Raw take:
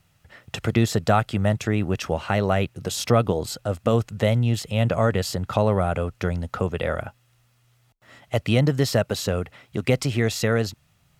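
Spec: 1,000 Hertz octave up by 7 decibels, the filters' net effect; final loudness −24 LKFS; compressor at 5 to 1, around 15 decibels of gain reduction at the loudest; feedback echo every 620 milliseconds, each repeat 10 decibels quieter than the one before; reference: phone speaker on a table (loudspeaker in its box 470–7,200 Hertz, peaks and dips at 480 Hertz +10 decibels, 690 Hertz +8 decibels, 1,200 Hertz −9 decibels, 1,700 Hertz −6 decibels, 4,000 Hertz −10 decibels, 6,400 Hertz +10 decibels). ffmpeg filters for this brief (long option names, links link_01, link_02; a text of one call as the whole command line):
ffmpeg -i in.wav -af "equalizer=frequency=1000:width_type=o:gain=5.5,acompressor=threshold=-30dB:ratio=5,highpass=frequency=470:width=0.5412,highpass=frequency=470:width=1.3066,equalizer=frequency=480:width_type=q:width=4:gain=10,equalizer=frequency=690:width_type=q:width=4:gain=8,equalizer=frequency=1200:width_type=q:width=4:gain=-9,equalizer=frequency=1700:width_type=q:width=4:gain=-6,equalizer=frequency=4000:width_type=q:width=4:gain=-10,equalizer=frequency=6400:width_type=q:width=4:gain=10,lowpass=frequency=7200:width=0.5412,lowpass=frequency=7200:width=1.3066,aecho=1:1:620|1240|1860|2480:0.316|0.101|0.0324|0.0104,volume=9dB" out.wav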